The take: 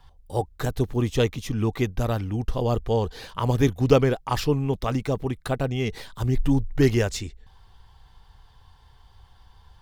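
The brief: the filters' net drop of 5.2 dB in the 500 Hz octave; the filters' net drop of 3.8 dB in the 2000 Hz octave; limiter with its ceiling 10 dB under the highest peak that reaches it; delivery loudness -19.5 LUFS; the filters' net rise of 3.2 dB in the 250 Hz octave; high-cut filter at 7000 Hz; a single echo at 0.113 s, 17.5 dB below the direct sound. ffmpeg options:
-af "lowpass=7k,equalizer=f=250:t=o:g=6,equalizer=f=500:t=o:g=-8.5,equalizer=f=2k:t=o:g=-4.5,alimiter=limit=-14dB:level=0:latency=1,aecho=1:1:113:0.133,volume=7.5dB"

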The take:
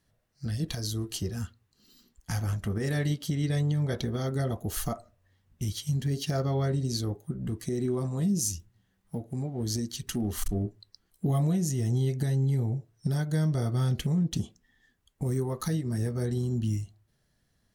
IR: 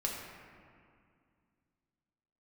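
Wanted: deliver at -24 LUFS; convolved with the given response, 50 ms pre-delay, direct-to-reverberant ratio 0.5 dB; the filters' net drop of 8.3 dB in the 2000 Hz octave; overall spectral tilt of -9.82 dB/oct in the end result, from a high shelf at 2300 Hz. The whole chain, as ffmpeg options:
-filter_complex "[0:a]equalizer=f=2k:t=o:g=-8.5,highshelf=f=2.3k:g=-4.5,asplit=2[a][b];[1:a]atrim=start_sample=2205,adelay=50[c];[b][c]afir=irnorm=-1:irlink=0,volume=-4dB[d];[a][d]amix=inputs=2:normalize=0,volume=4dB"

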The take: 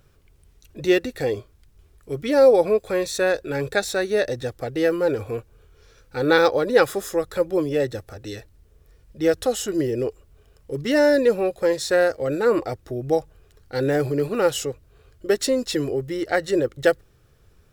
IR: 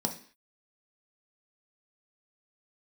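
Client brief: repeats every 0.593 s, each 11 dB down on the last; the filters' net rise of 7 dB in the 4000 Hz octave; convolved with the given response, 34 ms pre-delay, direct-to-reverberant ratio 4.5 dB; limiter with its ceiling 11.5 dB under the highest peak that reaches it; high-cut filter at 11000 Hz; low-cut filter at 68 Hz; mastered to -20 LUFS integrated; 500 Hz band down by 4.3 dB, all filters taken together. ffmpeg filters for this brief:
-filter_complex "[0:a]highpass=68,lowpass=11k,equalizer=f=500:t=o:g=-5,equalizer=f=4k:t=o:g=8.5,alimiter=limit=-14dB:level=0:latency=1,aecho=1:1:593|1186|1779:0.282|0.0789|0.0221,asplit=2[a][b];[1:a]atrim=start_sample=2205,adelay=34[c];[b][c]afir=irnorm=-1:irlink=0,volume=-9.5dB[d];[a][d]amix=inputs=2:normalize=0,volume=3.5dB"

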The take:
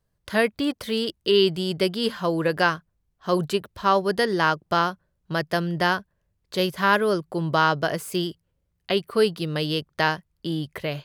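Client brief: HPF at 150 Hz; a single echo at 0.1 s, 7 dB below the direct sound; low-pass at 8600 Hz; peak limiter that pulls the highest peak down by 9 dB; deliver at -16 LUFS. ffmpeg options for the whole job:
-af "highpass=150,lowpass=8.6k,alimiter=limit=-14dB:level=0:latency=1,aecho=1:1:100:0.447,volume=10.5dB"

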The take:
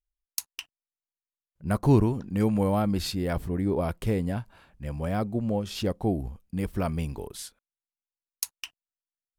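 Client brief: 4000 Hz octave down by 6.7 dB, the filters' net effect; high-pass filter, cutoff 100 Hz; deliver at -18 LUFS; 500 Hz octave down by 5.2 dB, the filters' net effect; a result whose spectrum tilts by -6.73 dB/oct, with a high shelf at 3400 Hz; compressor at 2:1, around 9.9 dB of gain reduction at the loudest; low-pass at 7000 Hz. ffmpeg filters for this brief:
-af "highpass=100,lowpass=7k,equalizer=f=500:t=o:g=-6.5,highshelf=f=3.4k:g=-5,equalizer=f=4k:t=o:g=-4.5,acompressor=threshold=-35dB:ratio=2,volume=19dB"

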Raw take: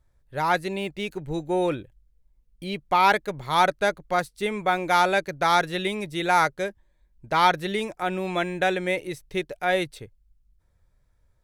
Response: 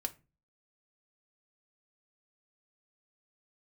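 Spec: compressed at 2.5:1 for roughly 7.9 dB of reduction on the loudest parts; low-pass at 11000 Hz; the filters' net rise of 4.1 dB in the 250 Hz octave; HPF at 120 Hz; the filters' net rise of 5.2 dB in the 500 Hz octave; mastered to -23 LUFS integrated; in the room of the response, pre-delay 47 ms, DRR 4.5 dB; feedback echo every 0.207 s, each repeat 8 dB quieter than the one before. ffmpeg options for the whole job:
-filter_complex "[0:a]highpass=120,lowpass=11k,equalizer=f=250:t=o:g=4.5,equalizer=f=500:t=o:g=5.5,acompressor=threshold=-25dB:ratio=2.5,aecho=1:1:207|414|621|828|1035:0.398|0.159|0.0637|0.0255|0.0102,asplit=2[a][b];[1:a]atrim=start_sample=2205,adelay=47[c];[b][c]afir=irnorm=-1:irlink=0,volume=-5dB[d];[a][d]amix=inputs=2:normalize=0,volume=3dB"

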